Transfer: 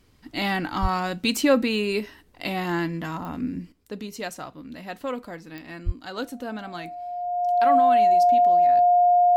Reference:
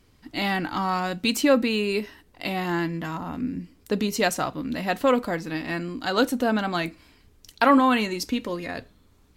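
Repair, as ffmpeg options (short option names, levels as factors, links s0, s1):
-filter_complex "[0:a]adeclick=t=4,bandreject=f=710:w=30,asplit=3[s0][s1][s2];[s0]afade=t=out:st=0.81:d=0.02[s3];[s1]highpass=f=140:w=0.5412,highpass=f=140:w=1.3066,afade=t=in:st=0.81:d=0.02,afade=t=out:st=0.93:d=0.02[s4];[s2]afade=t=in:st=0.93:d=0.02[s5];[s3][s4][s5]amix=inputs=3:normalize=0,asplit=3[s6][s7][s8];[s6]afade=t=out:st=5.85:d=0.02[s9];[s7]highpass=f=140:w=0.5412,highpass=f=140:w=1.3066,afade=t=in:st=5.85:d=0.02,afade=t=out:st=5.97:d=0.02[s10];[s8]afade=t=in:st=5.97:d=0.02[s11];[s9][s10][s11]amix=inputs=3:normalize=0,asetnsamples=n=441:p=0,asendcmd='3.72 volume volume 10dB',volume=1"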